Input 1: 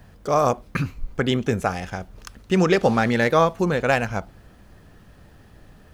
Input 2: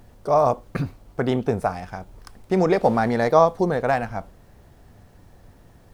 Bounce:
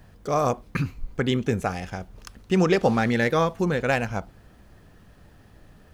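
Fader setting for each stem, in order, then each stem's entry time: −3.0, −13.5 decibels; 0.00, 0.00 seconds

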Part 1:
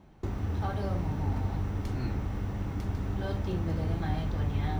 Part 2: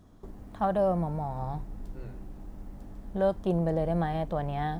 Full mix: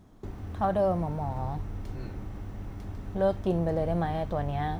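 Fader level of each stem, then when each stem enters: −7.5, 0.0 decibels; 0.00, 0.00 seconds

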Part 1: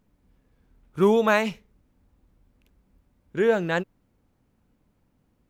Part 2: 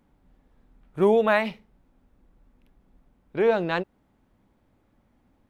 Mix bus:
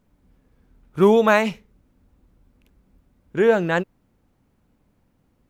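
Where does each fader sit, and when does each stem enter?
+2.5, −8.5 decibels; 0.00, 0.00 seconds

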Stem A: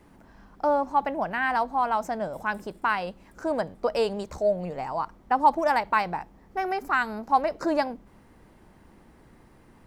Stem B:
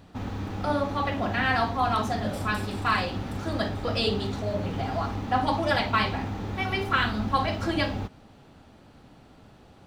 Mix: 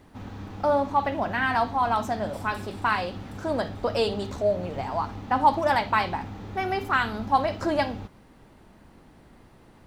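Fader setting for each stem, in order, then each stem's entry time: 0.0, −6.0 decibels; 0.00, 0.00 seconds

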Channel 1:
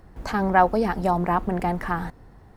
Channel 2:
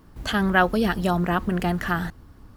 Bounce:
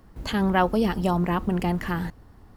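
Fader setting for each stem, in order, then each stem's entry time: −5.5, −4.5 decibels; 0.00, 0.00 seconds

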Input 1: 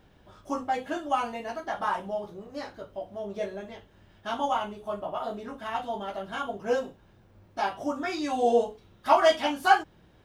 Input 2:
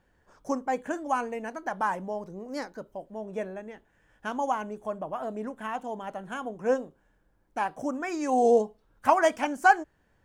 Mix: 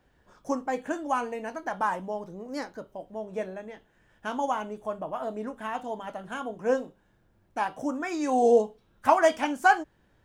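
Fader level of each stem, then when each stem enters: −10.5, 0.0 decibels; 0.00, 0.00 seconds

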